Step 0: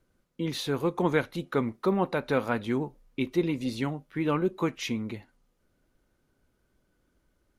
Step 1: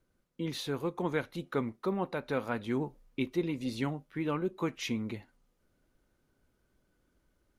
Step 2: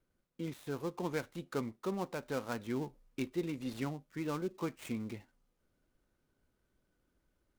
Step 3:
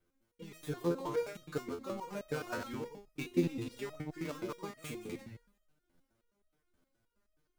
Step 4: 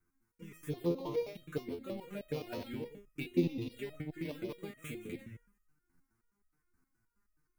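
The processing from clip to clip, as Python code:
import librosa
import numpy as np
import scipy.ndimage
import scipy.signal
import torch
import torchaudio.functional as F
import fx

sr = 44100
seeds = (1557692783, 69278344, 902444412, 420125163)

y1 = fx.rider(x, sr, range_db=10, speed_s=0.5)
y1 = y1 * librosa.db_to_amplitude(-5.0)
y2 = fx.dead_time(y1, sr, dead_ms=0.11)
y2 = y2 * librosa.db_to_amplitude(-4.5)
y3 = fx.reverse_delay(y2, sr, ms=103, wet_db=-7.0)
y3 = fx.transient(y3, sr, attack_db=5, sustain_db=9)
y3 = fx.resonator_held(y3, sr, hz=9.5, low_hz=86.0, high_hz=630.0)
y3 = y3 * librosa.db_to_amplitude(8.5)
y4 = fx.env_phaser(y3, sr, low_hz=570.0, high_hz=1500.0, full_db=-34.0)
y4 = y4 * librosa.db_to_amplitude(1.0)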